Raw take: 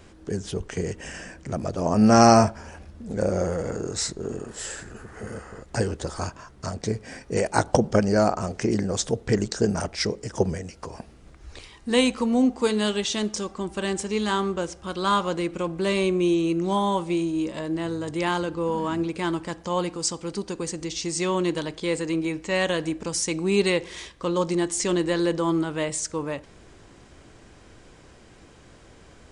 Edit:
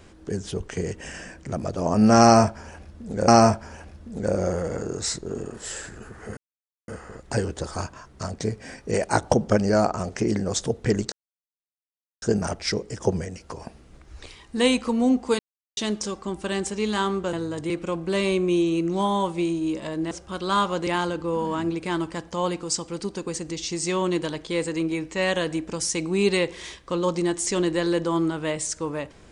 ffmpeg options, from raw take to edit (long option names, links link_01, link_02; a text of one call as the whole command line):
ffmpeg -i in.wav -filter_complex "[0:a]asplit=10[link_01][link_02][link_03][link_04][link_05][link_06][link_07][link_08][link_09][link_10];[link_01]atrim=end=3.282[link_11];[link_02]atrim=start=2.218:end=5.31,asetpts=PTS-STARTPTS,afade=type=out:start_time=3.088:duration=0.004:curve=hsin,apad=pad_dur=0.51[link_12];[link_03]atrim=start=5.31:end=9.55,asetpts=PTS-STARTPTS,afade=type=in:duration=0.004:curve=hsin,afade=type=out:start_time=4.236:duration=0.004:curve=hsin,apad=pad_dur=1.1[link_13];[link_04]atrim=start=9.55:end=12.72,asetpts=PTS-STARTPTS,afade=type=in:duration=0.004:curve=hsin,afade=type=out:start_time=3.166:duration=0.004:curve=hsin[link_14];[link_05]atrim=start=12.72:end=13.1,asetpts=PTS-STARTPTS,volume=0[link_15];[link_06]atrim=start=13.1:end=14.662,asetpts=PTS-STARTPTS,afade=type=in:duration=0.004:curve=hsin[link_16];[link_07]atrim=start=17.828:end=18.202[link_17];[link_08]atrim=start=15.418:end=17.832[link_18];[link_09]atrim=start=14.658:end=15.422[link_19];[link_10]atrim=start=18.198[link_20];[link_12][link_13][link_14][link_15][link_16]concat=n=5:v=0:a=1[link_21];[link_11][link_21]acrossfade=duration=0.004:curve1=hsin:curve2=hsin[link_22];[link_22][link_17]acrossfade=duration=0.004:curve1=hsin:curve2=hsin[link_23];[link_23][link_18]acrossfade=duration=0.004:curve1=hsin:curve2=hsin[link_24];[link_24][link_19]acrossfade=duration=0.004:curve1=hsin:curve2=hsin[link_25];[link_25][link_20]acrossfade=duration=0.004:curve1=hsin:curve2=hsin" out.wav